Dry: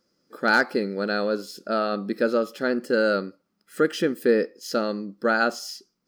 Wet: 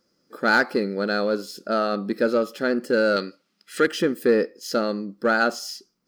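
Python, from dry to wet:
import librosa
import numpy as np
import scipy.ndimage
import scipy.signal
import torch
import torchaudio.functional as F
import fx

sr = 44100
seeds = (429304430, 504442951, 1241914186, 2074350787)

p1 = fx.weighting(x, sr, curve='D', at=(3.16, 3.87))
p2 = np.clip(p1, -10.0 ** (-19.0 / 20.0), 10.0 ** (-19.0 / 20.0))
p3 = p1 + (p2 * librosa.db_to_amplitude(-8.0))
y = p3 * librosa.db_to_amplitude(-1.0)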